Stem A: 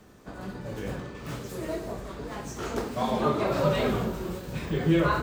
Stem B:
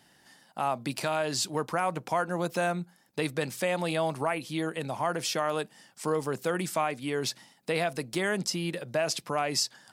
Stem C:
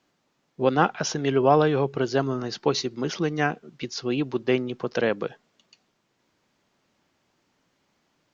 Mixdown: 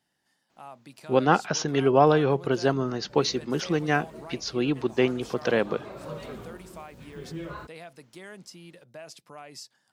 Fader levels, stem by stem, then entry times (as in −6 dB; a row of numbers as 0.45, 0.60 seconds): −14.5, −15.5, 0.0 decibels; 2.45, 0.00, 0.50 seconds